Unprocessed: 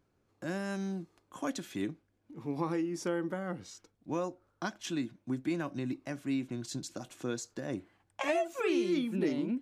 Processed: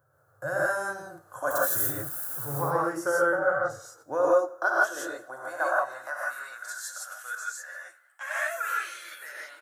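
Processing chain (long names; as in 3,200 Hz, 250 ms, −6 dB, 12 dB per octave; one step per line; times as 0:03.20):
0:01.50–0:02.54: spike at every zero crossing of −34.5 dBFS
drawn EQ curve 130 Hz 0 dB, 190 Hz −28 dB, 370 Hz −13 dB, 520 Hz +6 dB, 1,000 Hz 0 dB, 1,500 Hz +11 dB, 2,300 Hz −20 dB, 5,200 Hz −9 dB, 12,000 Hz +8 dB
high-pass filter sweep 130 Hz → 2,100 Hz, 0:03.28–0:07.00
0:03.22–0:03.70: high-frequency loss of the air 87 metres
repeating echo 93 ms, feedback 49%, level −21.5 dB
reverb whose tail is shaped and stops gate 190 ms rising, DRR −5 dB
0:07.35–0:08.31: string-ensemble chorus
level +3.5 dB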